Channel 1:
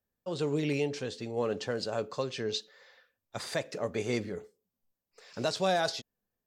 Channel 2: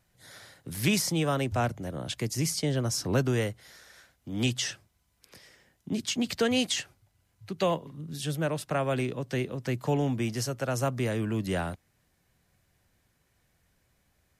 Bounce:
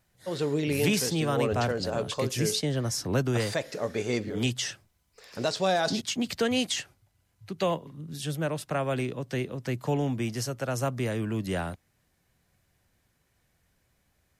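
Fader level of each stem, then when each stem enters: +2.5, −0.5 decibels; 0.00, 0.00 seconds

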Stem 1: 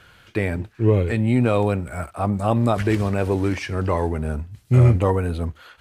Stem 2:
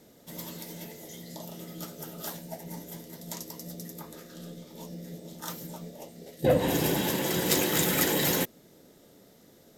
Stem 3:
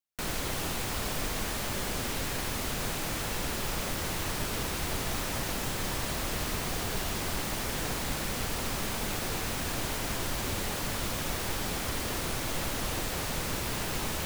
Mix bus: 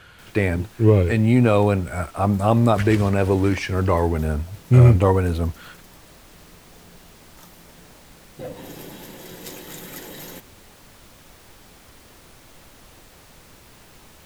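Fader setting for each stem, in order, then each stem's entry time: +2.5, −12.0, −15.5 decibels; 0.00, 1.95, 0.00 seconds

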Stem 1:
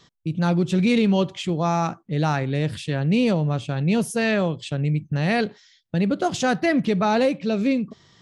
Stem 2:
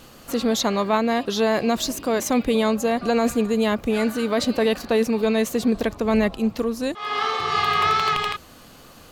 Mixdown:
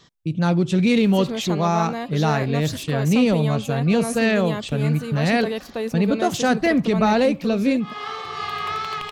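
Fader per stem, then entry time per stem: +1.5, −7.0 decibels; 0.00, 0.85 seconds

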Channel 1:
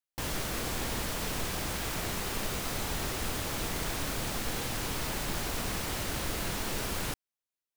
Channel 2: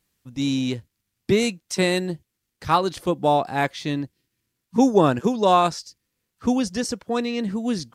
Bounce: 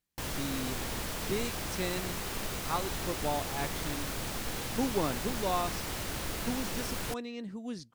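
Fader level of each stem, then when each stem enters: −2.5, −14.5 decibels; 0.00, 0.00 seconds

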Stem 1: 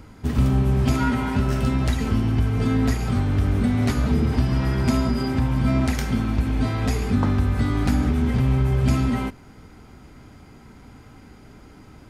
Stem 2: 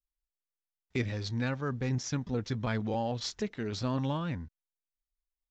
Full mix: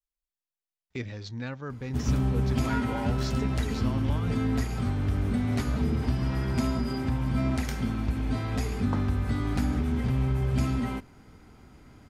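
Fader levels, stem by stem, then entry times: −6.5, −3.5 decibels; 1.70, 0.00 seconds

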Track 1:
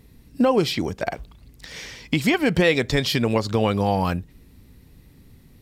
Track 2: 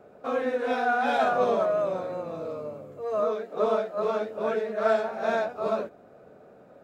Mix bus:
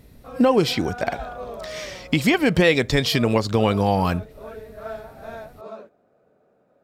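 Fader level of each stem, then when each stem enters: +1.5, −10.5 decibels; 0.00, 0.00 seconds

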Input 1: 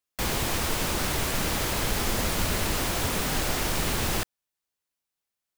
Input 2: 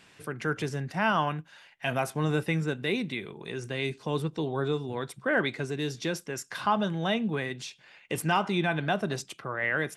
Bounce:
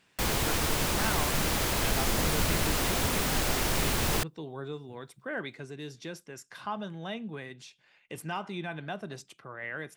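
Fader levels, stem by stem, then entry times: −1.0, −9.5 decibels; 0.00, 0.00 seconds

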